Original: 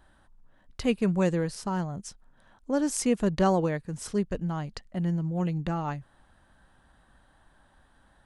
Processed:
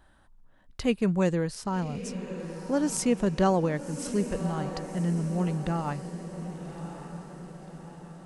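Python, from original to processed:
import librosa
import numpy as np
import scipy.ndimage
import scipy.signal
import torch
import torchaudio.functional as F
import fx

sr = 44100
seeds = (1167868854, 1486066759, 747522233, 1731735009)

y = fx.echo_diffused(x, sr, ms=1158, feedback_pct=52, wet_db=-10.5)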